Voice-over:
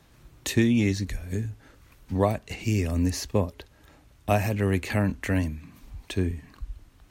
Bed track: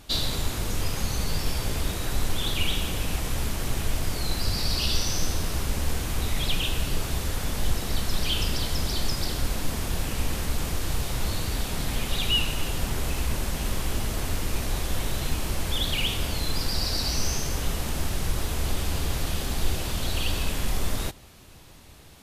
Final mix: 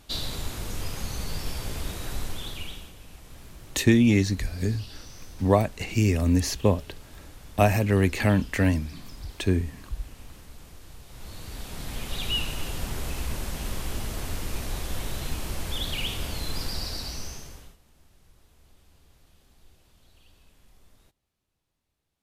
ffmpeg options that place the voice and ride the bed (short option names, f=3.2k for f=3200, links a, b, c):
-filter_complex "[0:a]adelay=3300,volume=3dB[a];[1:a]volume=10dB,afade=t=out:st=2.11:d=0.83:silence=0.199526,afade=t=in:st=11.06:d=1.27:silence=0.177828,afade=t=out:st=16.64:d=1.13:silence=0.0421697[b];[a][b]amix=inputs=2:normalize=0"